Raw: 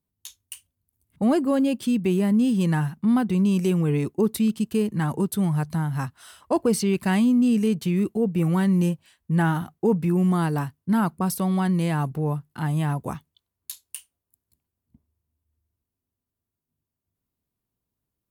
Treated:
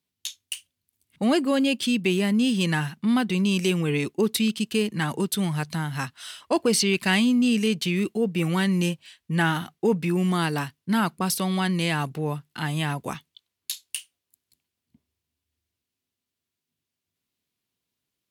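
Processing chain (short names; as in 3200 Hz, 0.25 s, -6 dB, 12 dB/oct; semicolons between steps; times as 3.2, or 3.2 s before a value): weighting filter D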